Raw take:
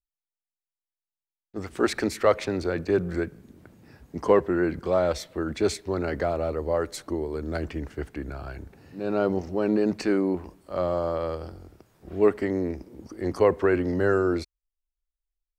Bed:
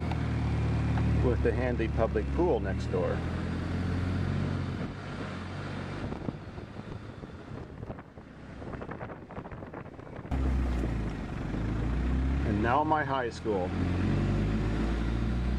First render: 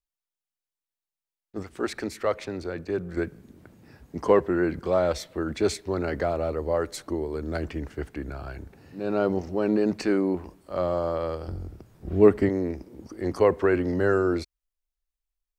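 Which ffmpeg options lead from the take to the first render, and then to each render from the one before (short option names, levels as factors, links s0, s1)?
-filter_complex "[0:a]asettb=1/sr,asplit=3[s0][s1][s2];[s0]atrim=end=11.484[s3];[s1]atrim=start=11.48:end=12.49,asetpts=PTS-STARTPTS,afade=t=in:d=0.004:c=qsin,afade=t=out:st=1.006:d=0.004:c=qsin,lowshelf=f=270:g=12[s4];[s2]atrim=start=12.486[s5];[s3][s4]acrossfade=d=0.004:c1=hsin:c2=qsin[s6];[s6][s5]acrossfade=d=0.004:c1=qsin:c2=hsin,asplit=3[s7][s8][s9];[s7]atrim=end=1.632[s10];[s8]atrim=start=1.628:end=3.172,asetpts=PTS-STARTPTS,volume=0.531[s11];[s9]atrim=start=3.168[s12];[s10][s11]acrossfade=d=0.004:c1=hsin:c2=hsin[s13];[s13][s12]acrossfade=d=0.004:c1=hsin:c2=hsin"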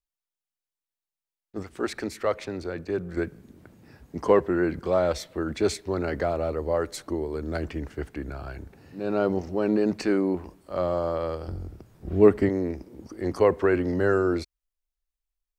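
-af anull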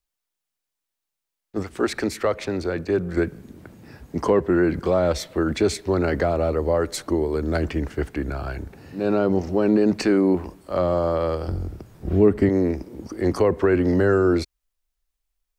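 -filter_complex "[0:a]acrossover=split=340[s0][s1];[s1]acompressor=threshold=0.0355:ratio=2[s2];[s0][s2]amix=inputs=2:normalize=0,asplit=2[s3][s4];[s4]alimiter=limit=0.126:level=0:latency=1:release=118,volume=1.33[s5];[s3][s5]amix=inputs=2:normalize=0"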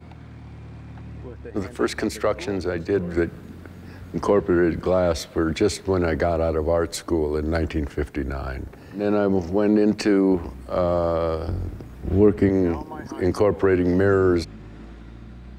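-filter_complex "[1:a]volume=0.282[s0];[0:a][s0]amix=inputs=2:normalize=0"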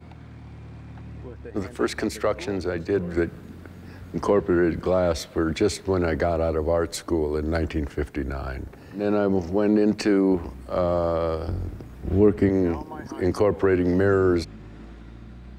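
-af "volume=0.841"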